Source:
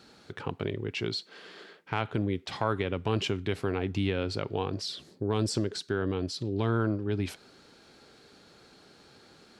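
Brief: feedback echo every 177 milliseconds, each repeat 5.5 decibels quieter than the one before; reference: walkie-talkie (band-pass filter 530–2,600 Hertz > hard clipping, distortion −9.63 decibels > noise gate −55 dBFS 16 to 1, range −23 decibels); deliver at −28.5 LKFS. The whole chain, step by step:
band-pass filter 530–2,600 Hz
repeating echo 177 ms, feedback 53%, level −5.5 dB
hard clipping −30.5 dBFS
noise gate −55 dBFS 16 to 1, range −23 dB
level +10 dB

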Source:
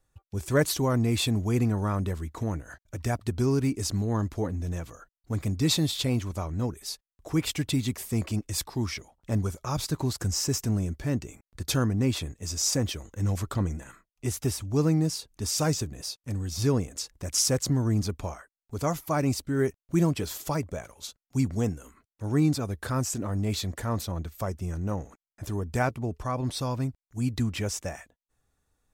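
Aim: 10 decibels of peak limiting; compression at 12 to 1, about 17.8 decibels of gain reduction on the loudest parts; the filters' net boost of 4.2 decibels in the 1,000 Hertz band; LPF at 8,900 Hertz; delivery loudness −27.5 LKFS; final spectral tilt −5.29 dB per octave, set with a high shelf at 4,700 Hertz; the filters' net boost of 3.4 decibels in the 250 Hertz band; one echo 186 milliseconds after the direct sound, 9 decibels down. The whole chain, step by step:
low-pass filter 8,900 Hz
parametric band 250 Hz +4 dB
parametric band 1,000 Hz +5.5 dB
high-shelf EQ 4,700 Hz −6 dB
downward compressor 12 to 1, threshold −35 dBFS
brickwall limiter −32.5 dBFS
single-tap delay 186 ms −9 dB
level +14 dB

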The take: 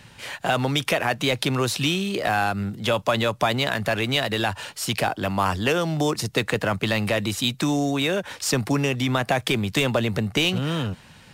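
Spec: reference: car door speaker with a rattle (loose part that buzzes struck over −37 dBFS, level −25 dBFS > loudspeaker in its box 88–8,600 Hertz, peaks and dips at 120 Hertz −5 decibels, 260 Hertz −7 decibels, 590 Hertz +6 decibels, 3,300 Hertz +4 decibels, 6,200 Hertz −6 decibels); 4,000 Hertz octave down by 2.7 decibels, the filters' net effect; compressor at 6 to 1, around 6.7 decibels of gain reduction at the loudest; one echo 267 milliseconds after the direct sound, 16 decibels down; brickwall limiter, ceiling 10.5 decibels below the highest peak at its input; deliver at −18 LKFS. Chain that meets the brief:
parametric band 4,000 Hz −6.5 dB
downward compressor 6 to 1, threshold −25 dBFS
brickwall limiter −20.5 dBFS
single-tap delay 267 ms −16 dB
loose part that buzzes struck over −37 dBFS, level −25 dBFS
loudspeaker in its box 88–8,600 Hz, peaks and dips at 120 Hz −5 dB, 260 Hz −7 dB, 590 Hz +6 dB, 3,300 Hz +4 dB, 6,200 Hz −6 dB
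level +12 dB

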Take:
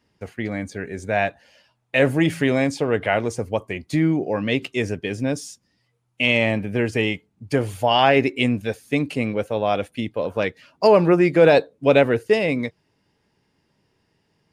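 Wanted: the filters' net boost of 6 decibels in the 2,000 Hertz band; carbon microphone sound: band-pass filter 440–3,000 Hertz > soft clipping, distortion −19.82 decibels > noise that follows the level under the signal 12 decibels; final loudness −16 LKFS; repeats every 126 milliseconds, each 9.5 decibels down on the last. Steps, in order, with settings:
band-pass filter 440–3,000 Hz
parametric band 2,000 Hz +8.5 dB
repeating echo 126 ms, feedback 33%, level −9.5 dB
soft clipping −6 dBFS
noise that follows the level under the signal 12 dB
level +5 dB

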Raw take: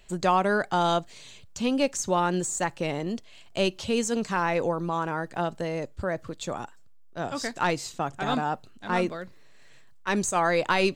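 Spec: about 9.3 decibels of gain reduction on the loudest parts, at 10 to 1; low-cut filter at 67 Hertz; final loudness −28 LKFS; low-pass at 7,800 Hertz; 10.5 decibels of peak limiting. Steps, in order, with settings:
high-pass filter 67 Hz
low-pass filter 7,800 Hz
downward compressor 10 to 1, threshold −28 dBFS
level +10.5 dB
brickwall limiter −17.5 dBFS

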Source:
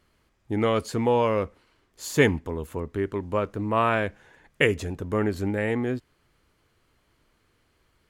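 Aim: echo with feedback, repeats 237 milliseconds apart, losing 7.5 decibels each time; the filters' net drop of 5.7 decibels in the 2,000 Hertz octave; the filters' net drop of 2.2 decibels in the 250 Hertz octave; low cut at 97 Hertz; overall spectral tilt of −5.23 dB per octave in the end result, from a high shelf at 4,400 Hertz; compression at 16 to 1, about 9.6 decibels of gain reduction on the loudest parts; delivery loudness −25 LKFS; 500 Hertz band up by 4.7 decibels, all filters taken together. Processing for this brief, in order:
high-pass filter 97 Hz
parametric band 250 Hz −5 dB
parametric band 500 Hz +7 dB
parametric band 2,000 Hz −8.5 dB
high-shelf EQ 4,400 Hz +6.5 dB
downward compressor 16 to 1, threshold −21 dBFS
repeating echo 237 ms, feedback 42%, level −7.5 dB
level +3.5 dB

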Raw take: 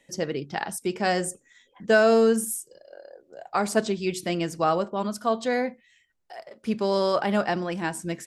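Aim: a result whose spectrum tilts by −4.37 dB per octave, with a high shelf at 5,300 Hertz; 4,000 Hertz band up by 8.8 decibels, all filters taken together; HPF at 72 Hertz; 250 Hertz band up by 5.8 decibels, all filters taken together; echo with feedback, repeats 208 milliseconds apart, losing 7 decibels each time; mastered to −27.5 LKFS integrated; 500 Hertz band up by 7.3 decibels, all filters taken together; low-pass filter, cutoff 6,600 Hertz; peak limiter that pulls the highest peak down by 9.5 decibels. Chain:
high-pass filter 72 Hz
low-pass filter 6,600 Hz
parametric band 250 Hz +5.5 dB
parametric band 500 Hz +7.5 dB
parametric band 4,000 Hz +8 dB
high-shelf EQ 5,300 Hz +9 dB
brickwall limiter −12 dBFS
repeating echo 208 ms, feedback 45%, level −7 dB
level −4.5 dB

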